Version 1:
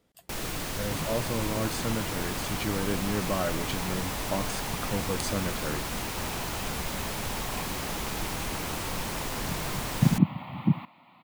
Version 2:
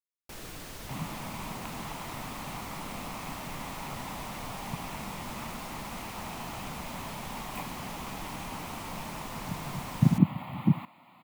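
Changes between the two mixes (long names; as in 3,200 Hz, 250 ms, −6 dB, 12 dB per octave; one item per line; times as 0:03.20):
speech: muted
first sound −9.5 dB
second sound: add high shelf with overshoot 5,500 Hz +7.5 dB, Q 1.5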